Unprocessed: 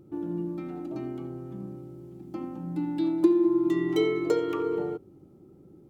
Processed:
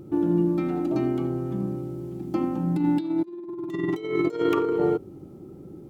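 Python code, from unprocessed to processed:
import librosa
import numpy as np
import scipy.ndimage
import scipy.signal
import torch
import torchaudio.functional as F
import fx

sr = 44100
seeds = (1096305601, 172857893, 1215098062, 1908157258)

y = fx.over_compress(x, sr, threshold_db=-30.0, ratio=-0.5)
y = y * librosa.db_to_amplitude(6.5)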